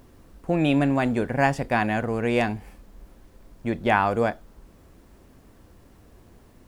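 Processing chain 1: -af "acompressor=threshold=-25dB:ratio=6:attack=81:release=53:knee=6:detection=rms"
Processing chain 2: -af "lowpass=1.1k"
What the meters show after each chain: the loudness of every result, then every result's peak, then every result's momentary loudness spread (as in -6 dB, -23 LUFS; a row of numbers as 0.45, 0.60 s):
-27.0, -25.0 LUFS; -11.0, -10.5 dBFS; 10, 12 LU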